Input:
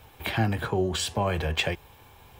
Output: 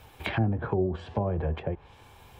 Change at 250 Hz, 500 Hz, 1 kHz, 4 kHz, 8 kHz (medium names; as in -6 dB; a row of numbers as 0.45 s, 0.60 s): 0.0 dB, -1.0 dB, -4.5 dB, -14.0 dB, under -20 dB